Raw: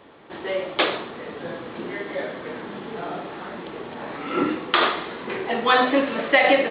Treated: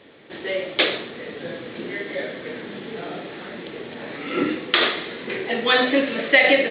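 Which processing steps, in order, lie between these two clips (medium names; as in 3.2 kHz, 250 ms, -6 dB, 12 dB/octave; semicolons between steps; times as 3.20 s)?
ten-band graphic EQ 125 Hz +5 dB, 250 Hz +4 dB, 500 Hz +6 dB, 1 kHz -6 dB, 2 kHz +8 dB, 4 kHz +9 dB; trim -5 dB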